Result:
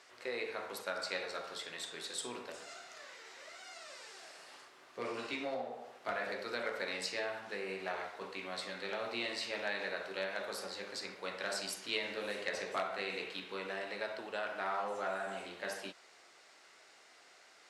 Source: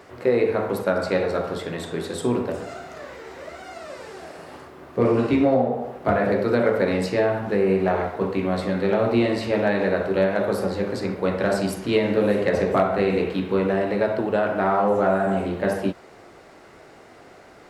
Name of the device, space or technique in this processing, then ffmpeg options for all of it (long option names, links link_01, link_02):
piezo pickup straight into a mixer: -af "lowpass=6000,aderivative,volume=2.5dB"